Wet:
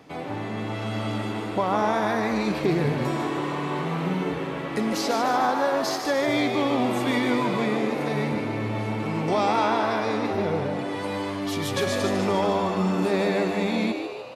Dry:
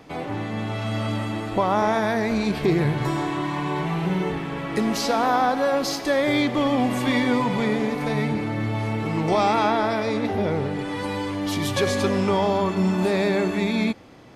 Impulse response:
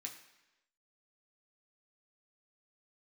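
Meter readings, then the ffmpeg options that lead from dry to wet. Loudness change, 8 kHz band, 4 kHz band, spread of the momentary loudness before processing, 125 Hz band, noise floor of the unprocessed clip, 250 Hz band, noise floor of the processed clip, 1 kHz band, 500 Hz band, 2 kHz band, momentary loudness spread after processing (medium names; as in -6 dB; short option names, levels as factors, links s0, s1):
-2.0 dB, -2.0 dB, -2.0 dB, 7 LU, -3.5 dB, -31 dBFS, -2.5 dB, -32 dBFS, -1.5 dB, -1.5 dB, -1.5 dB, 7 LU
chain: -filter_complex "[0:a]highpass=79,asplit=2[s0][s1];[s1]asplit=7[s2][s3][s4][s5][s6][s7][s8];[s2]adelay=149,afreqshift=100,volume=0.447[s9];[s3]adelay=298,afreqshift=200,volume=0.254[s10];[s4]adelay=447,afreqshift=300,volume=0.145[s11];[s5]adelay=596,afreqshift=400,volume=0.0832[s12];[s6]adelay=745,afreqshift=500,volume=0.0473[s13];[s7]adelay=894,afreqshift=600,volume=0.0269[s14];[s8]adelay=1043,afreqshift=700,volume=0.0153[s15];[s9][s10][s11][s12][s13][s14][s15]amix=inputs=7:normalize=0[s16];[s0][s16]amix=inputs=2:normalize=0,volume=0.708"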